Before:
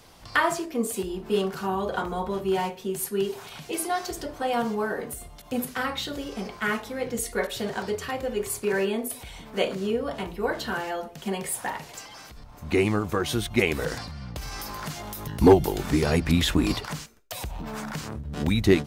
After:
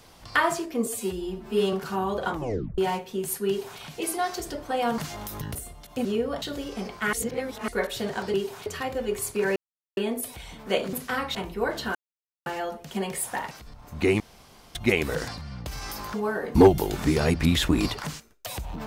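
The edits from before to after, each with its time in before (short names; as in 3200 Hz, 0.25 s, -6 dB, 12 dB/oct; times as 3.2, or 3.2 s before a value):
0.86–1.44 stretch 1.5×
2.04 tape stop 0.45 s
3.19–3.51 copy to 7.94
4.69–5.1 swap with 14.84–15.41
5.6–6.02 swap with 9.8–10.17
6.73–7.28 reverse
8.84 insert silence 0.41 s
10.77 insert silence 0.51 s
11.82–12.21 cut
12.9–13.45 room tone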